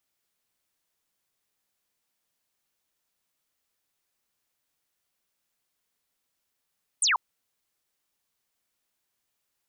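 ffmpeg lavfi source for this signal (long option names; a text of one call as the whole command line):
ffmpeg -f lavfi -i "aevalsrc='0.1*clip(t/0.002,0,1)*clip((0.14-t)/0.002,0,1)*sin(2*PI*9800*0.14/log(860/9800)*(exp(log(860/9800)*t/0.14)-1))':duration=0.14:sample_rate=44100" out.wav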